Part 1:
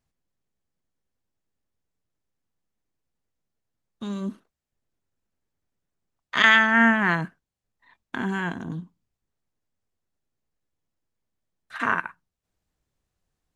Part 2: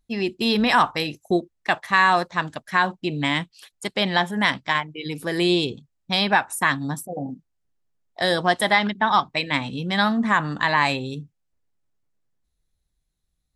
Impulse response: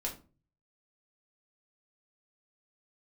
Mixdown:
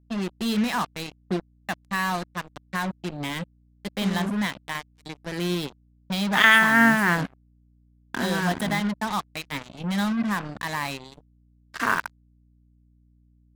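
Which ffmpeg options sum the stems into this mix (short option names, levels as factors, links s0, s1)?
-filter_complex "[0:a]volume=1.06[s0];[1:a]highpass=110,equalizer=f=190:w=2.2:g=12,volume=0.316[s1];[s0][s1]amix=inputs=2:normalize=0,acrusher=bits=4:mix=0:aa=0.5,aeval=exprs='val(0)+0.00126*(sin(2*PI*60*n/s)+sin(2*PI*2*60*n/s)/2+sin(2*PI*3*60*n/s)/3+sin(2*PI*4*60*n/s)/4+sin(2*PI*5*60*n/s)/5)':c=same"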